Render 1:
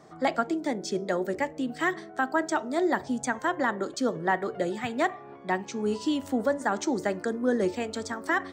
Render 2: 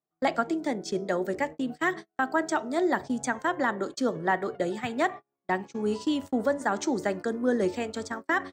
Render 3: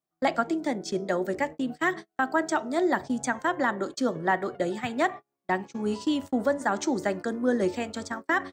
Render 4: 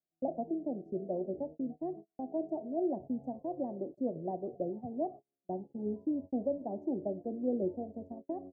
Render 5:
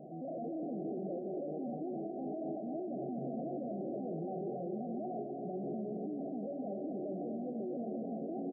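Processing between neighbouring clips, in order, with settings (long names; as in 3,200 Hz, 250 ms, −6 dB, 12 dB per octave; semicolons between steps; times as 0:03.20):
noise gate −35 dBFS, range −40 dB
notch filter 440 Hz, Q 12; level +1 dB
elliptic low-pass filter 690 Hz, stop band 50 dB; level −7 dB
sign of each sample alone; brick-wall band-pass 130–790 Hz; repeating echo 246 ms, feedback 54%, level −5.5 dB; level −2.5 dB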